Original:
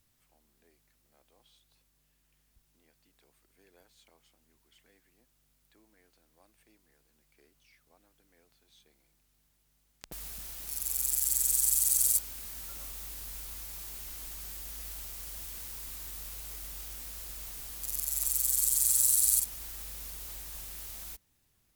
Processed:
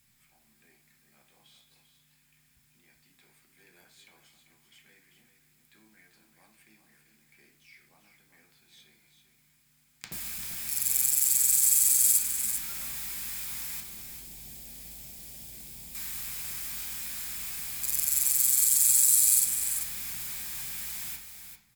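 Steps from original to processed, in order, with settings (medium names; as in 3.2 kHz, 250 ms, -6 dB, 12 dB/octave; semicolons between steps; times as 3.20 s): 13.80–15.95 s: FFT filter 610 Hz 0 dB, 1.3 kHz -18 dB, 3.4 kHz -9 dB; peak limiter -16 dBFS, peak gain reduction 6 dB; peaking EQ 410 Hz -11.5 dB 2.2 oct; delay 393 ms -8.5 dB; reverberation RT60 0.50 s, pre-delay 3 ms, DRR 0 dB; trim +5.5 dB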